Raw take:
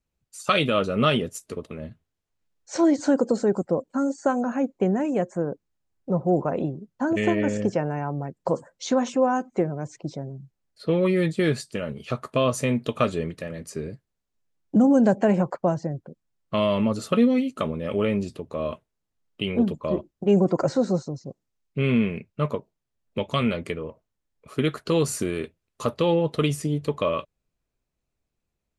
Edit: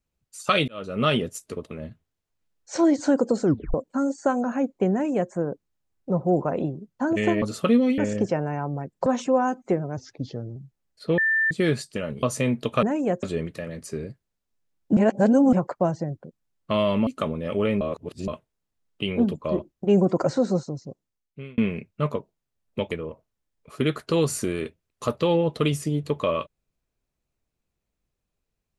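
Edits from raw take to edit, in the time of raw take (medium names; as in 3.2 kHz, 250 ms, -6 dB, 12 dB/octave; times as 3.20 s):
0.68–1.13 s: fade in
3.43 s: tape stop 0.31 s
4.92–5.32 s: copy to 13.06 s
8.50–8.94 s: delete
9.85–10.35 s: speed 85%
10.97–11.30 s: bleep 1.78 kHz -18.5 dBFS
12.02–12.46 s: delete
14.80–15.36 s: reverse
16.90–17.46 s: move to 7.42 s
18.20–18.67 s: reverse
21.19–21.97 s: fade out
23.30–23.69 s: delete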